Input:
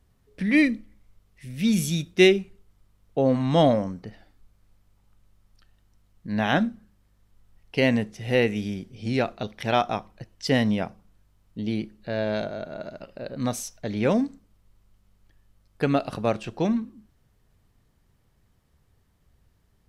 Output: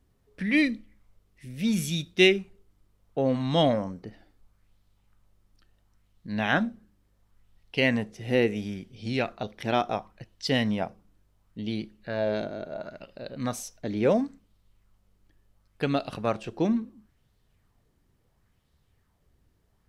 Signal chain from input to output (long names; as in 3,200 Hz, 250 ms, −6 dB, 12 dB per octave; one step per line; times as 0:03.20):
auto-filter bell 0.72 Hz 290–4,000 Hz +7 dB
level −4 dB